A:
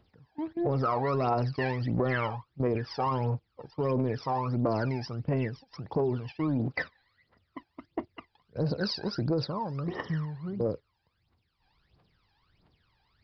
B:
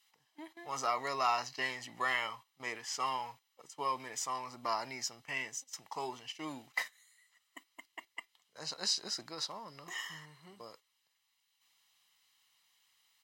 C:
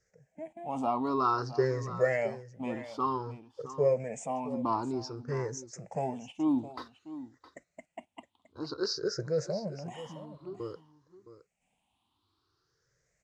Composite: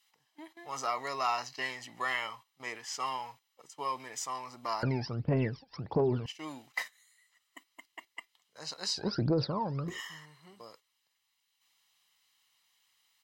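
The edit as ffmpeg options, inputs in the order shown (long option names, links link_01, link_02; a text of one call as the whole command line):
ffmpeg -i take0.wav -i take1.wav -filter_complex "[0:a]asplit=2[link_01][link_02];[1:a]asplit=3[link_03][link_04][link_05];[link_03]atrim=end=4.832[link_06];[link_01]atrim=start=4.828:end=6.262[link_07];[link_04]atrim=start=6.258:end=9.08[link_08];[link_02]atrim=start=8.84:end=10.01[link_09];[link_05]atrim=start=9.77[link_10];[link_06][link_07]acrossfade=duration=0.004:curve1=hsin:curve2=hsin[link_11];[link_11][link_08]acrossfade=duration=0.004:curve1=hsin:curve2=hsin[link_12];[link_12][link_09]acrossfade=duration=0.24:curve1=tri:curve2=tri[link_13];[link_13][link_10]acrossfade=duration=0.24:curve1=tri:curve2=tri" out.wav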